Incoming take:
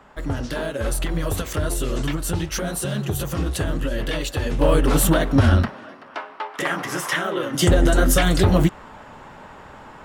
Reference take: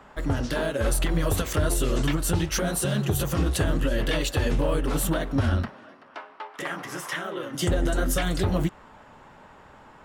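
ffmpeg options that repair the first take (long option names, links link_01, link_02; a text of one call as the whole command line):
ffmpeg -i in.wav -af "asetnsamples=nb_out_samples=441:pad=0,asendcmd='4.61 volume volume -8dB',volume=0dB" out.wav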